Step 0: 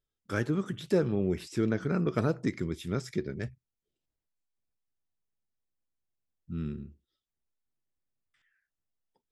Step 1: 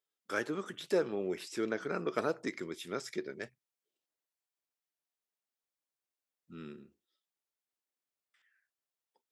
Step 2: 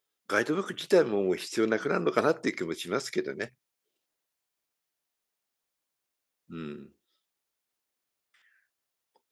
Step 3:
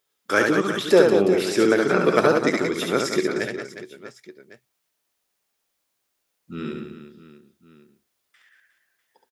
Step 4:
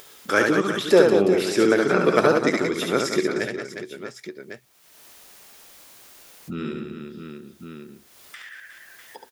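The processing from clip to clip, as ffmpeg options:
-af "highpass=420"
-af "bandreject=f=7.8k:w=23,volume=8dB"
-af "aecho=1:1:70|182|361.2|647.9|1107:0.631|0.398|0.251|0.158|0.1,volume=6.5dB"
-af "acompressor=mode=upward:threshold=-26dB:ratio=2.5"

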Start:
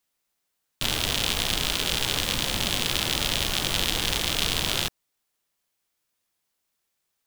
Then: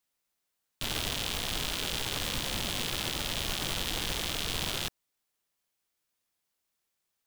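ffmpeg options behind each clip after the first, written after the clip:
-af "alimiter=limit=-12.5dB:level=0:latency=1:release=16,volume=-4dB"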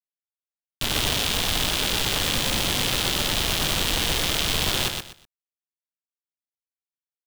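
-filter_complex "[0:a]acrusher=bits=8:dc=4:mix=0:aa=0.000001,asplit=2[a][b];[b]aecho=0:1:123|246|369:0.562|0.135|0.0324[c];[a][c]amix=inputs=2:normalize=0,volume=8dB"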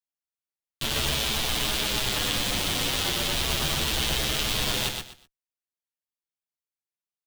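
-filter_complex "[0:a]asplit=2[a][b];[b]adelay=14,volume=-12dB[c];[a][c]amix=inputs=2:normalize=0,asplit=2[d][e];[e]adelay=8.1,afreqshift=-0.36[f];[d][f]amix=inputs=2:normalize=1"

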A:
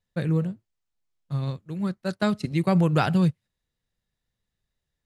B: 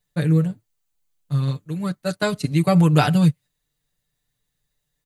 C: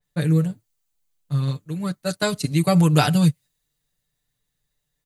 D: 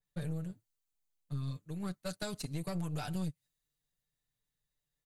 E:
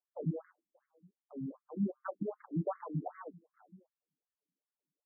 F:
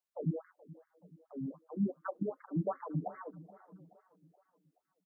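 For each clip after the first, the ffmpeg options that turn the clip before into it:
-af "highshelf=f=6.2k:g=11,bandreject=f=5.3k:w=12,aecho=1:1:6.8:0.76,volume=2dB"
-af "adynamicequalizer=threshold=0.00891:dfrequency=3700:dqfactor=0.7:tfrequency=3700:tqfactor=0.7:attack=5:release=100:ratio=0.375:range=3.5:mode=boostabove:tftype=highshelf,volume=-1dB"
-af "acompressor=threshold=-22dB:ratio=6,aeval=exprs='(tanh(12.6*val(0)+0.55)-tanh(0.55))/12.6':c=same,volume=-8.5dB"
-filter_complex "[0:a]adynamicsmooth=sensitivity=6.5:basefreq=610,asplit=2[a][b];[b]adelay=583.1,volume=-27dB,highshelf=f=4k:g=-13.1[c];[a][c]amix=inputs=2:normalize=0,afftfilt=real='re*between(b*sr/1024,230*pow(1600/230,0.5+0.5*sin(2*PI*2.6*pts/sr))/1.41,230*pow(1600/230,0.5+0.5*sin(2*PI*2.6*pts/sr))*1.41)':imag='im*between(b*sr/1024,230*pow(1600/230,0.5+0.5*sin(2*PI*2.6*pts/sr))/1.41,230*pow(1600/230,0.5+0.5*sin(2*PI*2.6*pts/sr))*1.41)':win_size=1024:overlap=0.75,volume=10.5dB"
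-af "aecho=1:1:426|852|1278|1704:0.112|0.0561|0.0281|0.014,volume=1dB"

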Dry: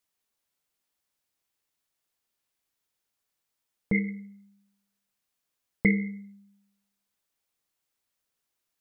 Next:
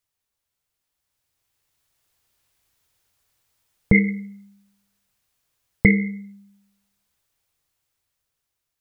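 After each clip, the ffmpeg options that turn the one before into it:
-af "lowshelf=f=150:t=q:w=1.5:g=7.5,dynaudnorm=f=480:g=7:m=13dB"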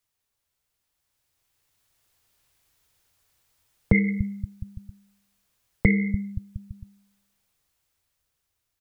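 -filter_complex "[0:a]acrossover=split=120[a][b];[a]aecho=1:1:290|522|707.6|856.1|974.9:0.631|0.398|0.251|0.158|0.1[c];[b]alimiter=limit=-12.5dB:level=0:latency=1:release=223[d];[c][d]amix=inputs=2:normalize=0,volume=1.5dB"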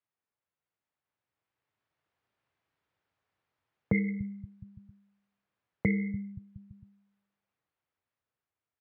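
-af "highpass=130,lowpass=2k,volume=-6dB"

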